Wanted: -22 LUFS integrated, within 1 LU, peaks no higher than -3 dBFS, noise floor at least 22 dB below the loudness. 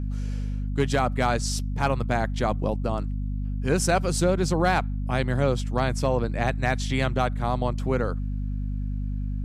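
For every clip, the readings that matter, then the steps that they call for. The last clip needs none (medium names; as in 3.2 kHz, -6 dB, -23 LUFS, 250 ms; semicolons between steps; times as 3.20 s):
hum 50 Hz; highest harmonic 250 Hz; hum level -26 dBFS; loudness -26.0 LUFS; peak level -9.0 dBFS; loudness target -22.0 LUFS
-> hum notches 50/100/150/200/250 Hz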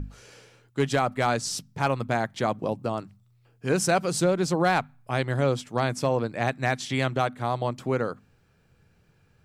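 hum not found; loudness -26.5 LUFS; peak level -10.0 dBFS; loudness target -22.0 LUFS
-> trim +4.5 dB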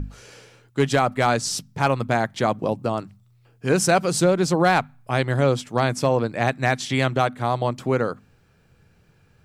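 loudness -22.0 LUFS; peak level -5.5 dBFS; noise floor -59 dBFS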